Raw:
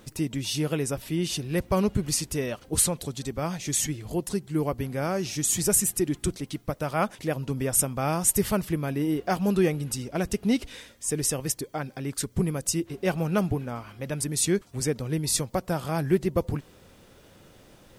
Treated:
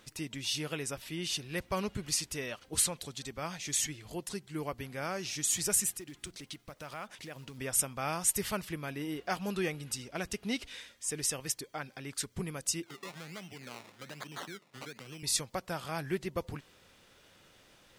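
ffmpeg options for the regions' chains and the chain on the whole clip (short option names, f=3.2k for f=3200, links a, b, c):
-filter_complex "[0:a]asettb=1/sr,asplit=3[a][b][c];[a]atrim=end=5.904[d];[b]atrim=start=5.9:end=7.58,asetpts=PTS-STARTPTS,afade=t=in:d=0.004:c=qsin,afade=t=out:st=1.676:d=0.004:c=qsin,acompressor=threshold=-32dB:ratio=4:attack=3.2:release=140:knee=1:detection=peak,acrusher=bits=6:mode=log:mix=0:aa=0.000001[e];[c]atrim=start=7.576[f];[d][e]acrossfade=d=0.004:c1=hsin:c2=qsin[g];[g][f]acrossfade=d=0.004:c1=qsin:c2=hsin,asettb=1/sr,asplit=3[h][i][j];[h]atrim=end=12.834[k];[i]atrim=start=12.83:end=15.23,asetpts=PTS-STARTPTS,afade=t=in:d=0.004:c=qsin,afade=t=out:st=2.396:d=0.004:c=qsin,acompressor=threshold=-32dB:ratio=6:attack=3.2:release=140:knee=1:detection=peak,acrusher=samples=22:mix=1:aa=0.000001:lfo=1:lforange=13.2:lforate=1.2,highpass=f=130:w=0.5412,highpass=f=130:w=1.3066[l];[j]atrim=start=15.226[m];[k][l]acrossfade=d=0.004:c1=hsin:c2=qsin[n];[n][m]acrossfade=d=0.004:c1=qsin:c2=hsin,lowpass=f=3.3k:p=1,tiltshelf=f=1.1k:g=-8,volume=-5dB"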